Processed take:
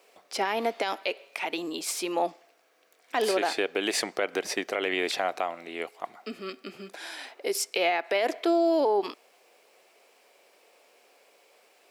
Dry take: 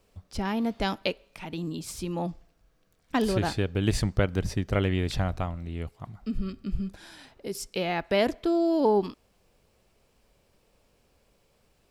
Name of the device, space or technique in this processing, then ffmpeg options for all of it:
laptop speaker: -af "highpass=frequency=370:width=0.5412,highpass=frequency=370:width=1.3066,equalizer=frequency=720:width_type=o:width=0.22:gain=5,equalizer=frequency=2200:width_type=o:width=0.58:gain=5.5,alimiter=limit=-23.5dB:level=0:latency=1:release=115,volume=7.5dB"

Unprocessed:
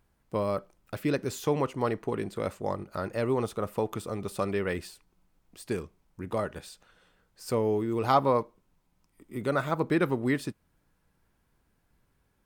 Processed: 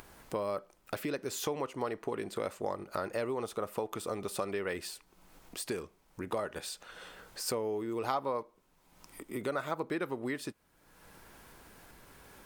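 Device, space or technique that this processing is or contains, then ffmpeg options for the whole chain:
upward and downward compression: -af "acompressor=mode=upward:threshold=-42dB:ratio=2.5,acompressor=threshold=-36dB:ratio=5,bass=frequency=250:gain=-10,treble=frequency=4000:gain=1,volume=5.5dB"

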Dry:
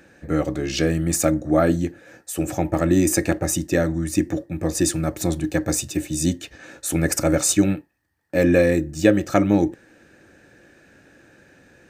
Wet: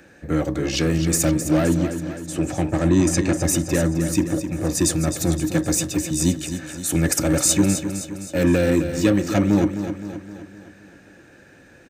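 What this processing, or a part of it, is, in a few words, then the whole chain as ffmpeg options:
one-band saturation: -filter_complex "[0:a]acrossover=split=290|2800[link_01][link_02][link_03];[link_02]asoftclip=type=tanh:threshold=-23dB[link_04];[link_01][link_04][link_03]amix=inputs=3:normalize=0,asettb=1/sr,asplit=3[link_05][link_06][link_07];[link_05]atrim=end=1.664[link_08];[link_06]atrim=start=1.66:end=3.37,asetpts=PTS-STARTPTS,afade=type=in:duration=0.004:curve=qsin,afade=type=out:start_time=1.706:duration=0.004:curve=qsin,lowpass=7100[link_09];[link_07]atrim=start=3.366[link_10];[link_08][link_09]acrossfade=duration=0.004:curve1=hsin:curve2=qsin[link_11];[link_11][link_10]acrossfade=duration=0.004:curve1=qsin:curve2=hsin,aecho=1:1:260|520|780|1040|1300|1560:0.335|0.178|0.0941|0.0499|0.0264|0.014,volume=2dB"

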